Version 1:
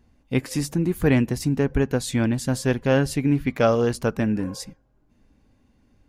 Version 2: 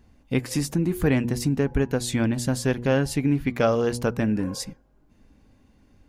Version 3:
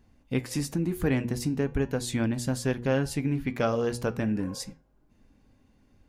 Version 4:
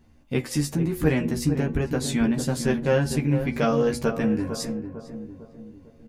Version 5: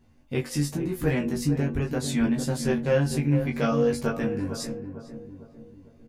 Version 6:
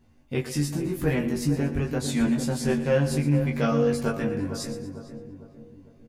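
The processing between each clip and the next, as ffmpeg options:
ffmpeg -i in.wav -af "bandreject=frequency=120.3:width_type=h:width=4,bandreject=frequency=240.6:width_type=h:width=4,bandreject=frequency=360.9:width_type=h:width=4,bandreject=frequency=481.2:width_type=h:width=4,bandreject=frequency=601.5:width_type=h:width=4,bandreject=frequency=721.8:width_type=h:width=4,bandreject=frequency=842.1:width_type=h:width=4,bandreject=frequency=962.4:width_type=h:width=4,acompressor=threshold=-30dB:ratio=1.5,volume=3.5dB" out.wav
ffmpeg -i in.wav -af "flanger=delay=7.4:depth=3.5:regen=-80:speed=0.36:shape=triangular" out.wav
ffmpeg -i in.wav -filter_complex "[0:a]asplit=2[link_01][link_02];[link_02]adelay=13,volume=-2.5dB[link_03];[link_01][link_03]amix=inputs=2:normalize=0,asplit=2[link_04][link_05];[link_05]adelay=451,lowpass=frequency=990:poles=1,volume=-8dB,asplit=2[link_06][link_07];[link_07]adelay=451,lowpass=frequency=990:poles=1,volume=0.51,asplit=2[link_08][link_09];[link_09]adelay=451,lowpass=frequency=990:poles=1,volume=0.51,asplit=2[link_10][link_11];[link_11]adelay=451,lowpass=frequency=990:poles=1,volume=0.51,asplit=2[link_12][link_13];[link_13]adelay=451,lowpass=frequency=990:poles=1,volume=0.51,asplit=2[link_14][link_15];[link_15]adelay=451,lowpass=frequency=990:poles=1,volume=0.51[link_16];[link_04][link_06][link_08][link_10][link_12][link_14][link_16]amix=inputs=7:normalize=0,volume=2dB" out.wav
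ffmpeg -i in.wav -filter_complex "[0:a]asplit=2[link_01][link_02];[link_02]adelay=21,volume=-3.5dB[link_03];[link_01][link_03]amix=inputs=2:normalize=0,volume=-4dB" out.wav
ffmpeg -i in.wav -af "aecho=1:1:118|236|354|472:0.224|0.094|0.0395|0.0166" out.wav

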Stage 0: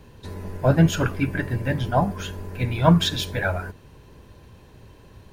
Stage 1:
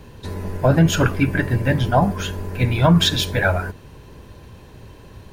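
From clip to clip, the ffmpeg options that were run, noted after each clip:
ffmpeg -i in.wav -af "alimiter=level_in=11dB:limit=-1dB:release=50:level=0:latency=1,volume=-5dB" out.wav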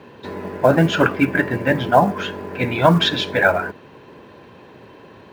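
ffmpeg -i in.wav -af "highpass=240,lowpass=2900,acrusher=bits=8:mode=log:mix=0:aa=0.000001,volume=4.5dB" out.wav

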